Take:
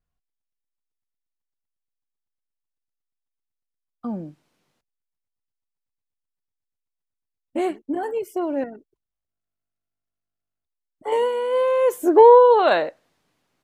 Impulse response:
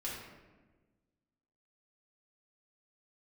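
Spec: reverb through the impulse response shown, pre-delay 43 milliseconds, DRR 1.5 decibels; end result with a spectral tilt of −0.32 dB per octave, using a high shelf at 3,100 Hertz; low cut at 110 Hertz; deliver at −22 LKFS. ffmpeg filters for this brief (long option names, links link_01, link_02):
-filter_complex "[0:a]highpass=110,highshelf=frequency=3100:gain=-9,asplit=2[link_01][link_02];[1:a]atrim=start_sample=2205,adelay=43[link_03];[link_02][link_03]afir=irnorm=-1:irlink=0,volume=-3dB[link_04];[link_01][link_04]amix=inputs=2:normalize=0,volume=-5.5dB"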